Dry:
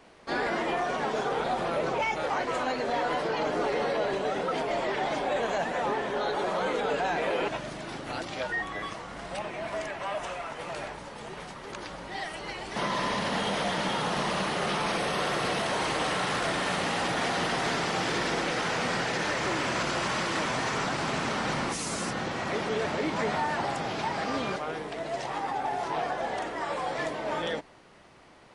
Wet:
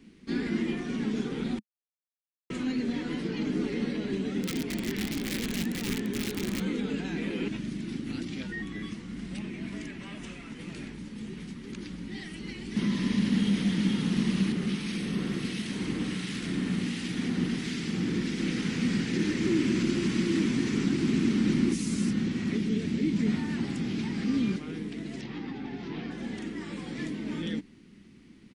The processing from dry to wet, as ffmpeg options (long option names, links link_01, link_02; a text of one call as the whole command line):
ffmpeg -i in.wav -filter_complex "[0:a]asplit=3[link_01][link_02][link_03];[link_01]afade=type=out:start_time=4.41:duration=0.02[link_04];[link_02]aeval=exprs='(mod(12.6*val(0)+1,2)-1)/12.6':channel_layout=same,afade=type=in:start_time=4.41:duration=0.02,afade=type=out:start_time=6.59:duration=0.02[link_05];[link_03]afade=type=in:start_time=6.59:duration=0.02[link_06];[link_04][link_05][link_06]amix=inputs=3:normalize=0,asettb=1/sr,asplit=3[link_07][link_08][link_09];[link_07]atrim=end=14.524[link_10];[link_08]atrim=start=14.52:end=18.4,asetpts=PTS-STARTPTS,afade=type=in:duration=0.004:curve=qsin,afade=type=out:start_time=3.876:duration=0.004:curve=qsin,acrossover=split=1700[link_11][link_12];[link_11]aeval=exprs='val(0)*(1-0.5/2+0.5/2*cos(2*PI*1.4*n/s))':channel_layout=same[link_13];[link_12]aeval=exprs='val(0)*(1-0.5/2-0.5/2*cos(2*PI*1.4*n/s))':channel_layout=same[link_14];[link_13][link_14]amix=inputs=2:normalize=0[link_15];[link_09]atrim=start=18.396[link_16];[link_10][link_15]acrossfade=duration=0.004:curve1=hsin:curve2=qsin[link_17];[link_17][link_16]acrossfade=duration=0.004:curve1=qsin:curve2=hsin,asettb=1/sr,asplit=3[link_18][link_19][link_20];[link_18]atrim=end=19.134[link_21];[link_19]atrim=start=19.13:end=21.75,asetpts=PTS-STARTPTS,afade=type=in:duration=0.004:curve=qsin,afade=type=out:start_time=2.616:duration=0.004:curve=qsin,equalizer=frequency=340:width_type=o:width=0.5:gain=7.5[link_22];[link_20]atrim=start=21.746[link_23];[link_21][link_22]acrossfade=duration=0.004:curve1=hsin:curve2=qsin[link_24];[link_24][link_23]acrossfade=duration=0.004:curve1=qsin:curve2=hsin,asettb=1/sr,asplit=3[link_25][link_26][link_27];[link_25]atrim=end=22.574[link_28];[link_26]atrim=start=22.57:end=23.26,asetpts=PTS-STARTPTS,afade=type=in:duration=0.004:curve=qsin,afade=type=out:start_time=0.686:duration=0.004:curve=qsin,equalizer=frequency=1100:width=0.71:gain=-6[link_29];[link_27]atrim=start=23.256[link_30];[link_28][link_29]acrossfade=duration=0.004:curve1=hsin:curve2=qsin[link_31];[link_31][link_30]acrossfade=duration=0.004:curve1=qsin:curve2=hsin,asettb=1/sr,asplit=3[link_32][link_33][link_34];[link_32]atrim=end=25.214[link_35];[link_33]atrim=start=25.21:end=26.11,asetpts=PTS-STARTPTS,afade=type=in:duration=0.004:curve=qsin,afade=type=out:start_time=0.896:duration=0.004:curve=qsin,lowpass=frequency=5000:width=0.5412,lowpass=frequency=5000:width=1.3066[link_36];[link_34]atrim=start=26.106[link_37];[link_35][link_36]acrossfade=duration=0.004:curve1=hsin:curve2=qsin[link_38];[link_38][link_37]acrossfade=duration=0.004:curve1=qsin:curve2=hsin,asplit=3[link_39][link_40][link_41];[link_39]atrim=end=1.59,asetpts=PTS-STARTPTS,afade=type=out:start_time=1.586:duration=0.004:curve=hsin[link_42];[link_40]atrim=start=1.59:end=2.5,asetpts=PTS-STARTPTS,volume=0[link_43];[link_41]atrim=start=2.5,asetpts=PTS-STARTPTS,afade=type=in:duration=0.004:curve=hsin[link_44];[link_42][link_43][link_44]concat=n=3:v=0:a=1,firequalizer=gain_entry='entry(140,0);entry(210,11);entry(610,-25);entry(2100,-7)':delay=0.05:min_phase=1,volume=2.5dB" out.wav